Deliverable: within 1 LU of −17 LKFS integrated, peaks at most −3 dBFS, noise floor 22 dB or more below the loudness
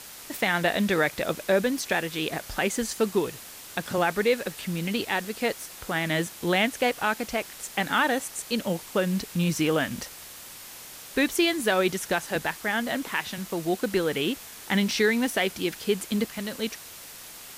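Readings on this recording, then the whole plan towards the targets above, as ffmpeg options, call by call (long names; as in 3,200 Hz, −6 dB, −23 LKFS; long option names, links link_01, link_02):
background noise floor −44 dBFS; target noise floor −49 dBFS; integrated loudness −27.0 LKFS; sample peak −11.5 dBFS; target loudness −17.0 LKFS
→ -af "afftdn=noise_reduction=6:noise_floor=-44"
-af "volume=10dB,alimiter=limit=-3dB:level=0:latency=1"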